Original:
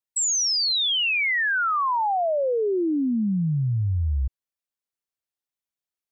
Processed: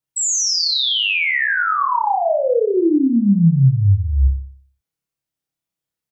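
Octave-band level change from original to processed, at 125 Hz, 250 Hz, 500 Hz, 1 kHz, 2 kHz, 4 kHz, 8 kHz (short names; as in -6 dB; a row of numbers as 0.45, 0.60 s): +9.5 dB, +8.5 dB, +6.5 dB, +5.0 dB, +4.5 dB, +4.5 dB, n/a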